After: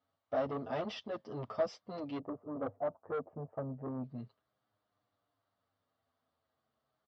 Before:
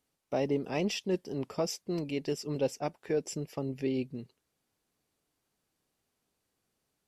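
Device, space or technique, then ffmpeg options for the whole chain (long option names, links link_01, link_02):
barber-pole flanger into a guitar amplifier: -filter_complex "[0:a]asplit=3[link_01][link_02][link_03];[link_01]afade=type=out:start_time=2.17:duration=0.02[link_04];[link_02]lowpass=frequency=1000:width=0.5412,lowpass=frequency=1000:width=1.3066,afade=type=in:start_time=2.17:duration=0.02,afade=type=out:start_time=4.03:duration=0.02[link_05];[link_03]afade=type=in:start_time=4.03:duration=0.02[link_06];[link_04][link_05][link_06]amix=inputs=3:normalize=0,asplit=2[link_07][link_08];[link_08]adelay=8.3,afreqshift=-0.35[link_09];[link_07][link_09]amix=inputs=2:normalize=1,asoftclip=type=tanh:threshold=-32.5dB,highpass=88,equalizer=frequency=100:width_type=q:width=4:gain=9,equalizer=frequency=170:width_type=q:width=4:gain=-8,equalizer=frequency=370:width_type=q:width=4:gain=-9,equalizer=frequency=650:width_type=q:width=4:gain=9,equalizer=frequency=1200:width_type=q:width=4:gain=9,equalizer=frequency=2500:width_type=q:width=4:gain=-10,lowpass=frequency=3900:width=0.5412,lowpass=frequency=3900:width=1.3066,volume=1dB"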